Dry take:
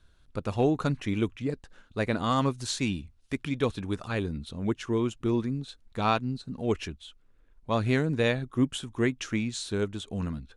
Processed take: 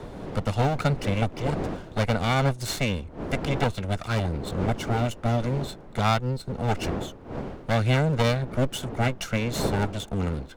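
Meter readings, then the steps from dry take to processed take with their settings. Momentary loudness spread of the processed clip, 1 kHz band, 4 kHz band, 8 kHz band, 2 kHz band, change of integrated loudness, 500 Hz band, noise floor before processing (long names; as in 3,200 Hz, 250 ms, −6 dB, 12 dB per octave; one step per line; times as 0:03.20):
8 LU, +4.5 dB, +4.0 dB, +3.0 dB, +4.0 dB, +3.0 dB, +2.5 dB, −61 dBFS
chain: lower of the sound and its delayed copy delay 1.4 ms
wind on the microphone 440 Hz −42 dBFS
multiband upward and downward compressor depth 40%
level +4.5 dB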